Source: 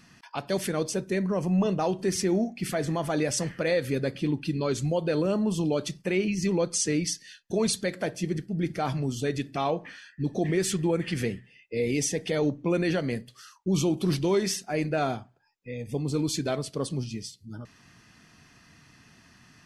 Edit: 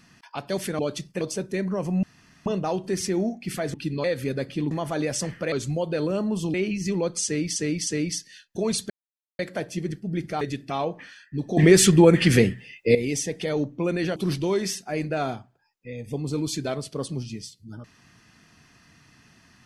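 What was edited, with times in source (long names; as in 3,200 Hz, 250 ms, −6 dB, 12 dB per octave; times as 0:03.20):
0:01.61: splice in room tone 0.43 s
0:02.89–0:03.70: swap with 0:04.37–0:04.67
0:05.69–0:06.11: move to 0:00.79
0:06.82–0:07.13: repeat, 3 plays
0:07.85: splice in silence 0.49 s
0:08.87–0:09.27: remove
0:10.43–0:11.81: clip gain +11.5 dB
0:13.02–0:13.97: remove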